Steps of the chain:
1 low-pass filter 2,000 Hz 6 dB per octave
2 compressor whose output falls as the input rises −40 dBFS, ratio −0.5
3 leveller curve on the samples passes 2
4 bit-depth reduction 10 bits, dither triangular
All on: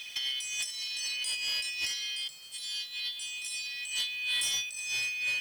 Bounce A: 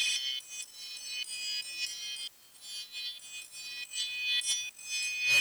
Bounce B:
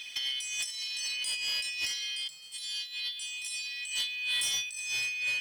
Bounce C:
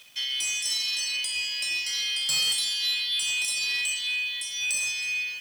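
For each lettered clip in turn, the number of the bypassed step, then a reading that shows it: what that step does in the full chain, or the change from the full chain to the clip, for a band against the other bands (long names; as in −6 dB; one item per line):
1, change in integrated loudness −2.5 LU
4, distortion level −26 dB
2, change in momentary loudness spread −2 LU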